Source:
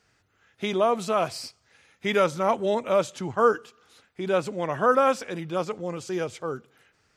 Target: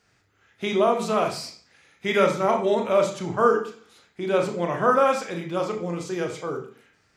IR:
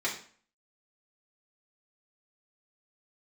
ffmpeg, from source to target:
-filter_complex "[0:a]asplit=2[a][b];[1:a]atrim=start_sample=2205,lowshelf=f=210:g=9,adelay=29[c];[b][c]afir=irnorm=-1:irlink=0,volume=-10dB[d];[a][d]amix=inputs=2:normalize=0"

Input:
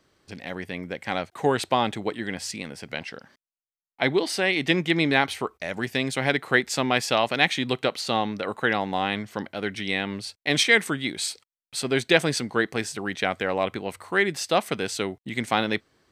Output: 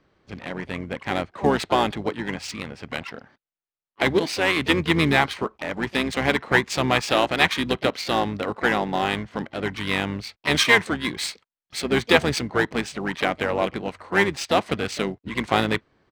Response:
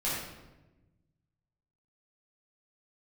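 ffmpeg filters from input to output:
-filter_complex "[0:a]asplit=4[a][b][c][d];[b]asetrate=22050,aresample=44100,atempo=2,volume=-8dB[e];[c]asetrate=35002,aresample=44100,atempo=1.25992,volume=-16dB[f];[d]asetrate=58866,aresample=44100,atempo=0.749154,volume=-15dB[g];[a][e][f][g]amix=inputs=4:normalize=0,acrusher=bits=7:mode=log:mix=0:aa=0.000001,adynamicsmooth=sensitivity=5:basefreq=3.4k,volume=1.5dB"

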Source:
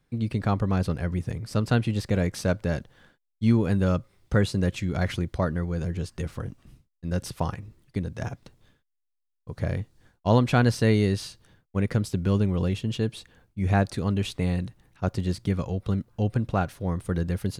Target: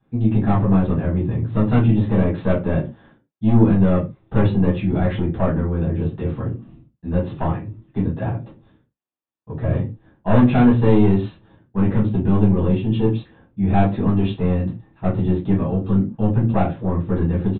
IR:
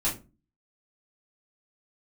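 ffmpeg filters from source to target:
-filter_complex "[0:a]highpass=f=250:p=1,equalizer=f=2.9k:t=o:w=2.5:g=-11.5,aresample=8000,asoftclip=type=tanh:threshold=-23dB,aresample=44100[a];[1:a]atrim=start_sample=2205,atrim=end_sample=6615[b];[a][b]afir=irnorm=-1:irlink=0,volume=3.5dB"

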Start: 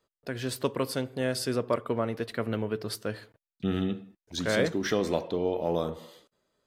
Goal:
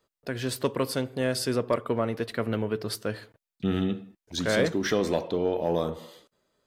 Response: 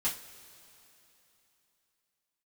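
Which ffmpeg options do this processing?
-af "asoftclip=type=tanh:threshold=-13.5dB,volume=2.5dB"

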